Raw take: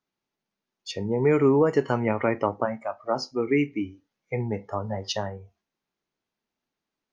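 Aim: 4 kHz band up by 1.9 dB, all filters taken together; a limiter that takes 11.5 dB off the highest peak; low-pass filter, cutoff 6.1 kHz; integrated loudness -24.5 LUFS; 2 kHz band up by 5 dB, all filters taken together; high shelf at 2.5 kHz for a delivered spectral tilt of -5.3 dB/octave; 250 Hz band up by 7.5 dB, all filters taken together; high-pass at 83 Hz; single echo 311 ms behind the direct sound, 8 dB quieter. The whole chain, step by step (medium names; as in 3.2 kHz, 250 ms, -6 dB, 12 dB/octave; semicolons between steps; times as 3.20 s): high-pass 83 Hz; low-pass 6.1 kHz; peaking EQ 250 Hz +9 dB; peaking EQ 2 kHz +6.5 dB; treble shelf 2.5 kHz -4 dB; peaking EQ 4 kHz +5 dB; peak limiter -16.5 dBFS; delay 311 ms -8 dB; trim +2.5 dB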